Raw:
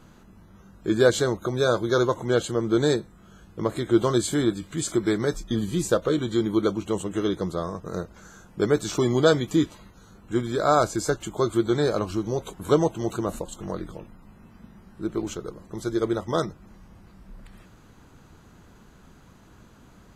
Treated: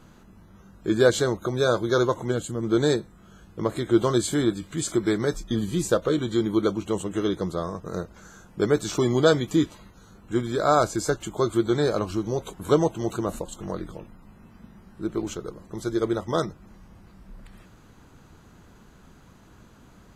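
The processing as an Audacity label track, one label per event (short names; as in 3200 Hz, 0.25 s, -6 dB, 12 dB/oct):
2.320000	2.630000	spectral gain 340–6600 Hz -8 dB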